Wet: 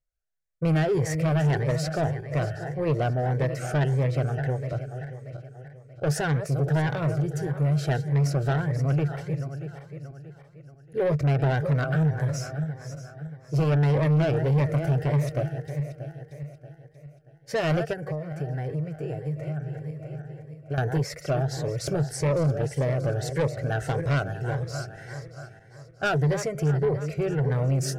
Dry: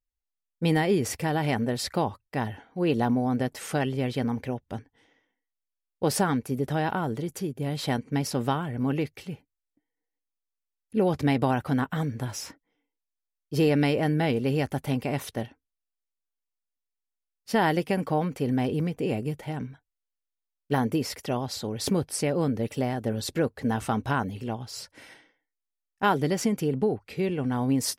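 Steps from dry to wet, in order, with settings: backward echo that repeats 316 ms, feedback 61%, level -11.5 dB; FFT filter 100 Hz 0 dB, 150 Hz +11 dB, 220 Hz -22 dB, 320 Hz -3 dB, 660 Hz +9 dB, 940 Hz -11 dB, 1.5 kHz +8 dB, 3.3 kHz -11 dB, 6.5 kHz -3 dB, 11 kHz -11 dB; 17.93–20.78 s: compression 4:1, threshold -31 dBFS, peak gain reduction 14 dB; saturation -21 dBFS, distortion -10 dB; Shepard-style phaser rising 1.7 Hz; trim +3 dB

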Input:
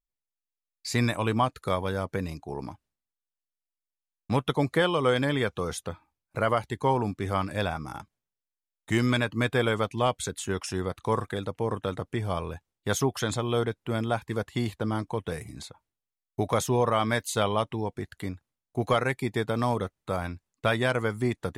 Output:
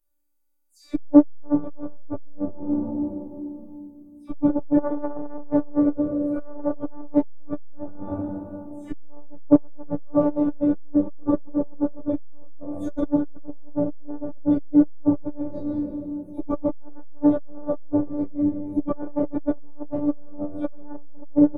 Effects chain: delay that grows with frequency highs early, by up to 154 ms; added noise violet -65 dBFS; treble shelf 7.7 kHz +7 dB; harmonic-percussive split percussive -7 dB; FFT filter 320 Hz 0 dB, 480 Hz +11 dB, 2.9 kHz -24 dB, 5.1 kHz -21 dB; low-pass that closes with the level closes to 1.3 kHz, closed at -25.5 dBFS; small resonant body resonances 250/3400 Hz, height 13 dB, ringing for 40 ms; robot voice 293 Hz; doubling 30 ms -12.5 dB; speakerphone echo 200 ms, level -13 dB; reverberation RT60 2.3 s, pre-delay 6 ms, DRR -10 dB; transformer saturation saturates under 460 Hz; trim +1 dB

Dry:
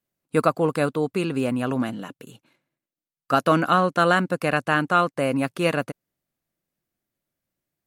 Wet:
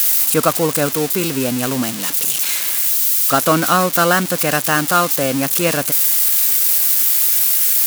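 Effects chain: zero-crossing glitches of -12.5 dBFS; trim +4 dB

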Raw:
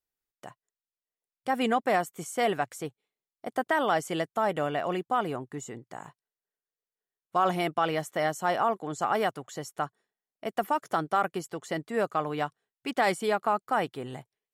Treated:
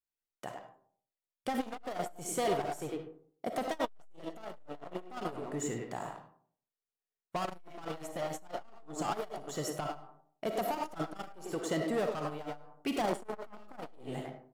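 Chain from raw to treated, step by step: overload inside the chain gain 28 dB; 13.02–13.80 s: peaking EQ 260 Hz +9 dB 2.3 oct; speakerphone echo 100 ms, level -6 dB; dynamic bell 2 kHz, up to -5 dB, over -46 dBFS, Q 0.89; waveshaping leveller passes 2; algorithmic reverb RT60 0.55 s, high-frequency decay 0.4×, pre-delay 15 ms, DRR 5.5 dB; transformer saturation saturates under 360 Hz; trim -5 dB

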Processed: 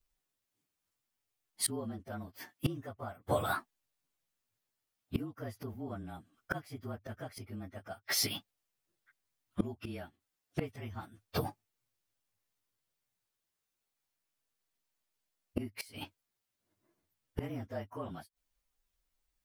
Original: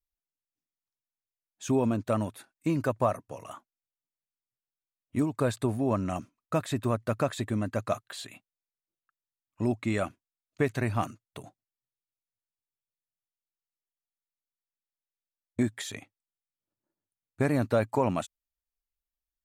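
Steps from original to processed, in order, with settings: frequency axis rescaled in octaves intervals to 110%; inverted gate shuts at -33 dBFS, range -27 dB; trim +14.5 dB

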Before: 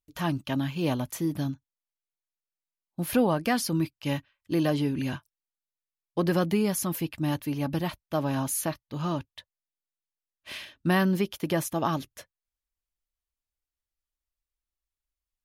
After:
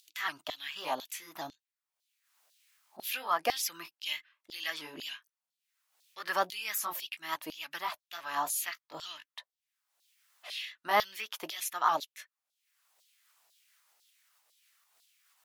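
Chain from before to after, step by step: sawtooth pitch modulation +2 st, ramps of 283 ms; upward compressor, threshold -44 dBFS; bass shelf 95 Hz +11.5 dB; LFO high-pass saw down 2 Hz 610–4200 Hz; trim -1 dB

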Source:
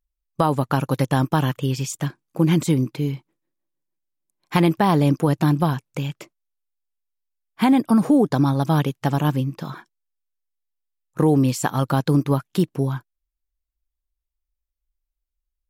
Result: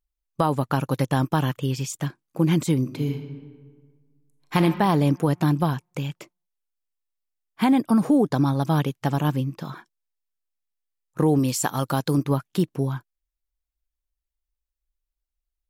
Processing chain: 2.80–4.58 s: reverb throw, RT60 1.6 s, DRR 5 dB; 11.39–12.18 s: tone controls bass -3 dB, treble +6 dB; trim -2.5 dB

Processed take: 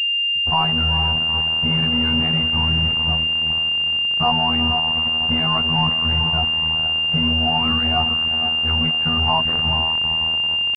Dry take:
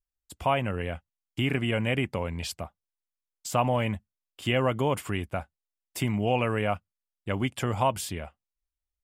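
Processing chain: tempo 0.84×; elliptic band-stop 220–740 Hz; level-controlled noise filter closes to 470 Hz, open at -26 dBFS; echo that smears into a reverb 451 ms, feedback 47%, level -8 dB; robot voice 80.5 Hz; in parallel at -5.5 dB: companded quantiser 2-bit; on the sum: class-D stage that switches slowly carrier 2.8 kHz; trim +6.5 dB

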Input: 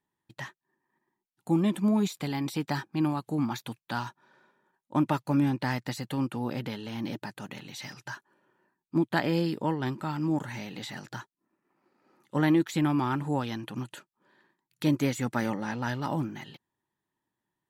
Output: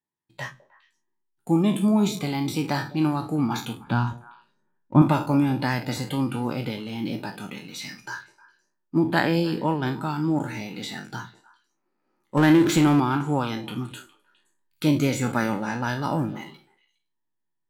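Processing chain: spectral sustain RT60 0.43 s; spectral noise reduction 10 dB; 3.84–5.02 s: tone controls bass +12 dB, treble -14 dB; in parallel at -4.5 dB: hysteresis with a dead band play -43.5 dBFS; 12.37–13.00 s: on the sum: power-law waveshaper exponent 0.7; on a send: repeats whose band climbs or falls 103 ms, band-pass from 170 Hz, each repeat 1.4 oct, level -12 dB

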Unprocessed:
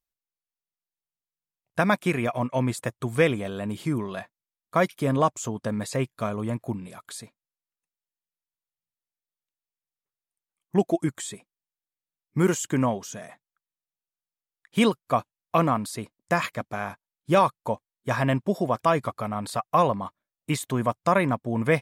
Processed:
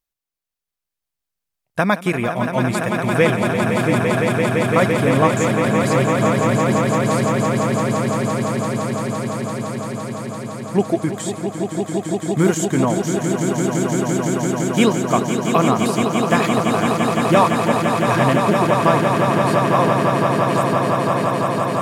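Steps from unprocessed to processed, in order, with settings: fade out at the end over 3.37 s; echo with a slow build-up 170 ms, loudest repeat 8, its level -7 dB; trim +4.5 dB

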